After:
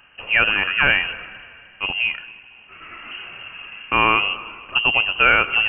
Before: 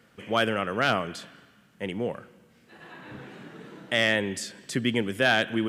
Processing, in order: multi-head echo 77 ms, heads first and third, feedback 67%, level -23 dB; wow and flutter 38 cents; inverted band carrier 3000 Hz; gain +7.5 dB

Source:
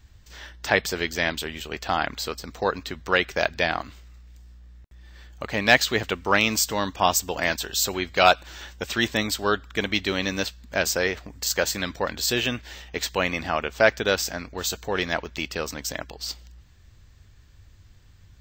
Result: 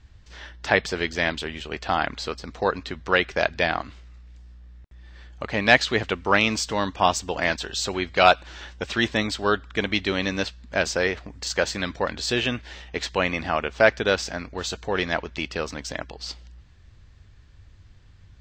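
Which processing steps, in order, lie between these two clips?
air absorption 92 m; gain +1.5 dB

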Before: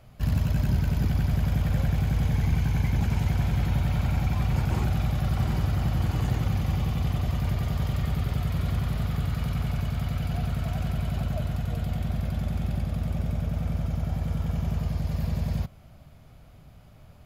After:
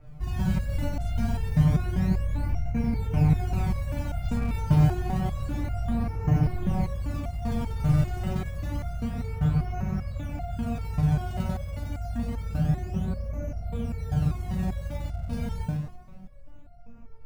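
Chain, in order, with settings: steep low-pass 2800 Hz 72 dB/oct; tilt -2.5 dB/oct; on a send: tape echo 0.115 s, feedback 61%, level -3 dB, low-pass 2100 Hz; on the sum: Schroeder reverb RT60 0.79 s, combs from 32 ms, DRR 7.5 dB; in parallel at -12 dB: decimation with a swept rate 35×, swing 160% 0.28 Hz; on the sum: stepped resonator 5.1 Hz 150–700 Hz; gain +8.5 dB

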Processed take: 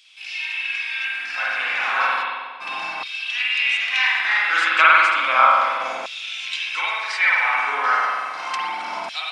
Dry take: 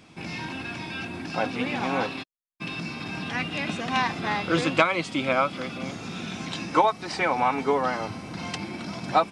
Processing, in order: spring tank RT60 1.4 s, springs 46 ms, chirp 80 ms, DRR -5 dB; LFO high-pass saw down 0.33 Hz 810–3300 Hz; gain +1 dB

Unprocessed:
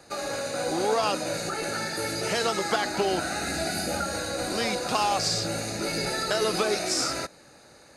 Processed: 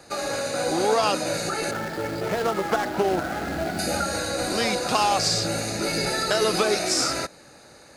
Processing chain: 1.71–3.79 median filter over 15 samples; gain +3.5 dB

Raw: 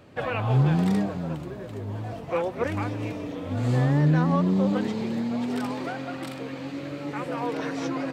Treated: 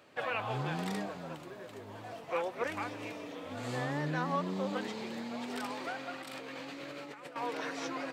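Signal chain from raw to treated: HPF 820 Hz 6 dB/oct; 6.22–7.36 negative-ratio compressor -43 dBFS, ratio -1; gain -2.5 dB

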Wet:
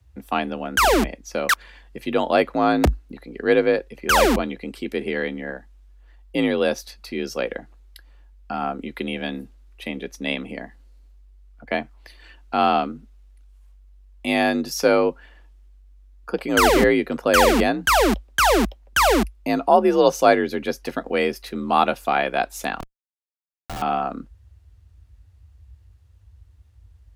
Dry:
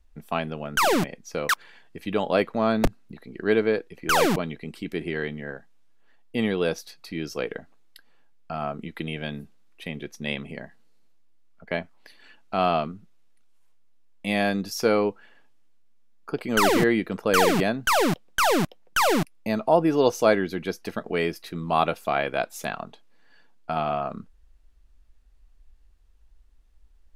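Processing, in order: frequency shift +48 Hz; 22.8–23.82 Schmitt trigger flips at -27.5 dBFS; gain +4 dB

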